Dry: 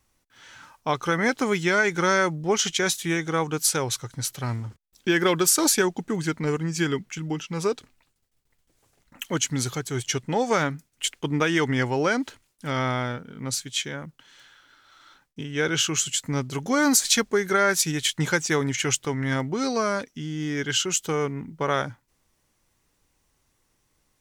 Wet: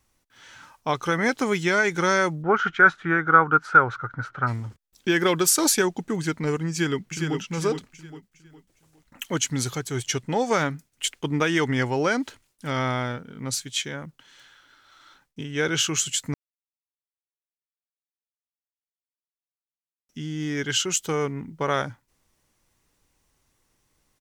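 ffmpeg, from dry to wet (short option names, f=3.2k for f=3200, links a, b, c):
-filter_complex "[0:a]asplit=3[a][b][c];[a]afade=t=out:st=2.42:d=0.02[d];[b]lowpass=f=1.4k:t=q:w=12,afade=t=in:st=2.42:d=0.02,afade=t=out:st=4.46:d=0.02[e];[c]afade=t=in:st=4.46:d=0.02[f];[d][e][f]amix=inputs=3:normalize=0,asplit=2[g][h];[h]afade=t=in:st=6.7:d=0.01,afade=t=out:st=7.38:d=0.01,aecho=0:1:410|820|1230|1640:0.562341|0.196819|0.0688868|0.0241104[i];[g][i]amix=inputs=2:normalize=0,asplit=3[j][k][l];[j]atrim=end=16.34,asetpts=PTS-STARTPTS,afade=t=out:st=16.336:d=0.004:c=hsin[m];[k]atrim=start=16.34:end=20.09,asetpts=PTS-STARTPTS,volume=0[n];[l]atrim=start=20.09,asetpts=PTS-STARTPTS,afade=t=in:d=0.004:c=hsin[o];[m][n][o]concat=n=3:v=0:a=1"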